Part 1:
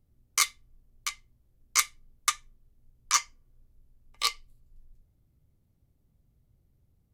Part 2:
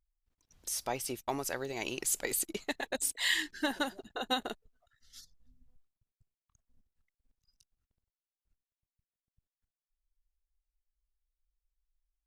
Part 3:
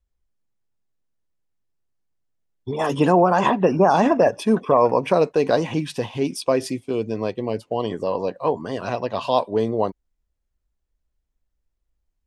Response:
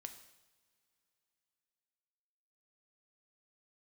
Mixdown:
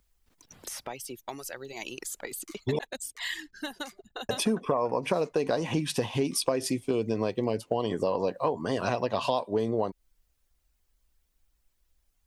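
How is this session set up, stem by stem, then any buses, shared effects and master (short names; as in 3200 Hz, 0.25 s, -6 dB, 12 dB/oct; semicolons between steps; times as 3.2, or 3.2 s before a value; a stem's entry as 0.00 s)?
-19.5 dB, 2.10 s, no send, Wiener smoothing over 15 samples; limiter -17.5 dBFS, peak gain reduction 11 dB
-3.0 dB, 0.00 s, no send, reverb removal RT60 0.86 s; three-band squash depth 70%
+1.5 dB, 0.00 s, muted 2.79–4.29, no send, high shelf 7500 Hz +9 dB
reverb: off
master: compressor 10:1, threshold -23 dBFS, peak gain reduction 13.5 dB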